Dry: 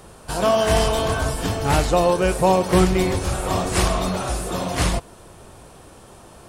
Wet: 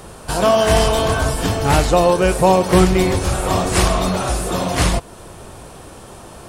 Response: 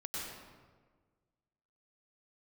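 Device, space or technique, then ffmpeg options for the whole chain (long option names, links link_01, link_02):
parallel compression: -filter_complex "[0:a]asplit=2[link_01][link_02];[link_02]acompressor=threshold=-30dB:ratio=6,volume=-4.5dB[link_03];[link_01][link_03]amix=inputs=2:normalize=0,volume=3dB"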